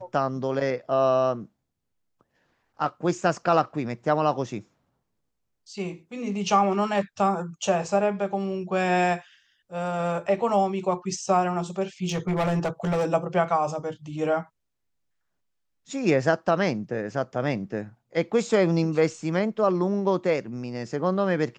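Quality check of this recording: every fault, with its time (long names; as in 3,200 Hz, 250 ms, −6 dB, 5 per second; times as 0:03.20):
0:12.04–0:13.06: clipping −20.5 dBFS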